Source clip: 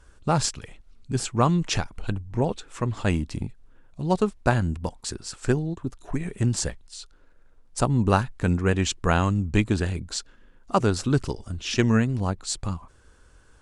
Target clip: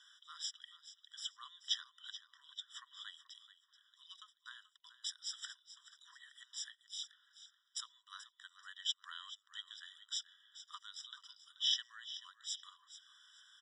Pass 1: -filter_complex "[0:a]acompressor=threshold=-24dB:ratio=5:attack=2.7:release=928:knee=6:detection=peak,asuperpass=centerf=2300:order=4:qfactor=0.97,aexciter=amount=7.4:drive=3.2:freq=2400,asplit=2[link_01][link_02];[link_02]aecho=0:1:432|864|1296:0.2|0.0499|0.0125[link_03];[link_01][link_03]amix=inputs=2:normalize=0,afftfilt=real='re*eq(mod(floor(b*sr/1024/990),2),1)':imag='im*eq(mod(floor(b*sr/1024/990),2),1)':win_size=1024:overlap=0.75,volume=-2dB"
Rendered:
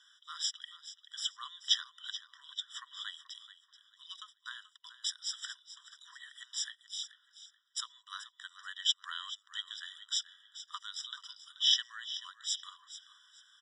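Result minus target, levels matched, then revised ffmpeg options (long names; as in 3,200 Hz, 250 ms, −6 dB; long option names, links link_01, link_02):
downward compressor: peak gain reduction −8 dB
-filter_complex "[0:a]acompressor=threshold=-34dB:ratio=5:attack=2.7:release=928:knee=6:detection=peak,asuperpass=centerf=2300:order=4:qfactor=0.97,aexciter=amount=7.4:drive=3.2:freq=2400,asplit=2[link_01][link_02];[link_02]aecho=0:1:432|864|1296:0.2|0.0499|0.0125[link_03];[link_01][link_03]amix=inputs=2:normalize=0,afftfilt=real='re*eq(mod(floor(b*sr/1024/990),2),1)':imag='im*eq(mod(floor(b*sr/1024/990),2),1)':win_size=1024:overlap=0.75,volume=-2dB"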